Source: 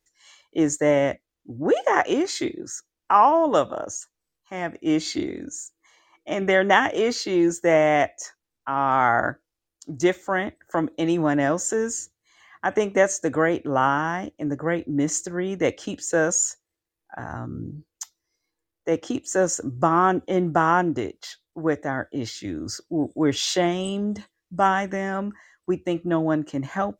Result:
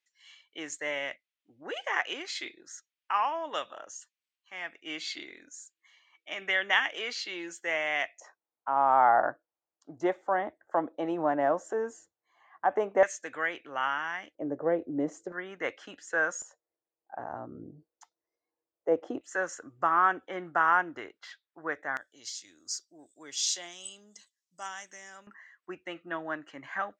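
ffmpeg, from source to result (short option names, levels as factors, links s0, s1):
-af "asetnsamples=n=441:p=0,asendcmd='8.2 bandpass f 780;13.03 bandpass f 2400;14.35 bandpass f 570;15.32 bandpass f 1500;16.42 bandpass f 630;19.21 bandpass f 1600;21.97 bandpass f 6600;25.27 bandpass f 1800',bandpass=f=2700:t=q:w=1.6:csg=0"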